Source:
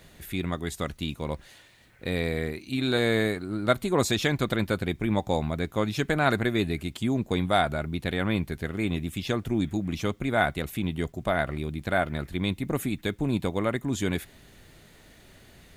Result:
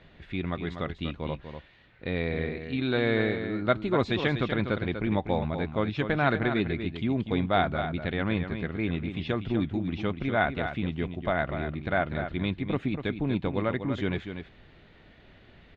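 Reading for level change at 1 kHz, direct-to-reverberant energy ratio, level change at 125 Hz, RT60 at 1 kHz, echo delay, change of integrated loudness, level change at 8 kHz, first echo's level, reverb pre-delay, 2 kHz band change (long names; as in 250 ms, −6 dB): −1.0 dB, no reverb audible, −1.0 dB, no reverb audible, 244 ms, −1.0 dB, below −25 dB, −8.5 dB, no reverb audible, −1.0 dB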